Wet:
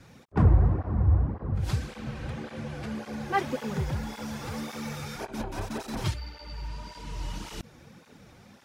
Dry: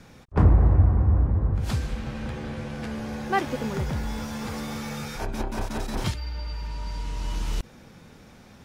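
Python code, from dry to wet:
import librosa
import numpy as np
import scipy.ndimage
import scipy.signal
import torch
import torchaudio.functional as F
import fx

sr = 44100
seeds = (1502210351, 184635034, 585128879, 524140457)

y = fx.flanger_cancel(x, sr, hz=1.8, depth_ms=5.1)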